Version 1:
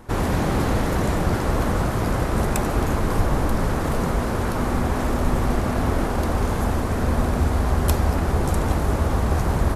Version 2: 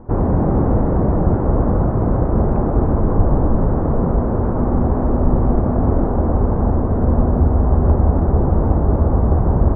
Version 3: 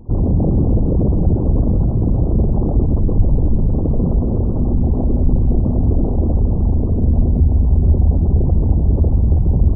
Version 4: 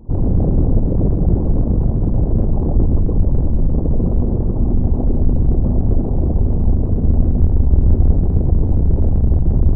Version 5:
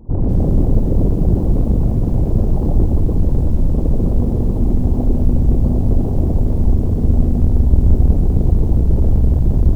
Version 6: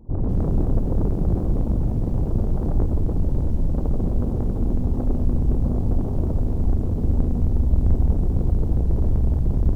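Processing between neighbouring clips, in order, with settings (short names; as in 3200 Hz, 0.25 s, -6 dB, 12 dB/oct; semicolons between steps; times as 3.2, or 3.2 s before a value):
Bessel low-pass 710 Hz, order 4; gain +6.5 dB
formant sharpening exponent 2; gain +1.5 dB
octaver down 2 oct, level 0 dB; gain -2 dB
lo-fi delay 0.2 s, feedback 35%, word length 7-bit, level -9 dB
self-modulated delay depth 0.74 ms; gain -6.5 dB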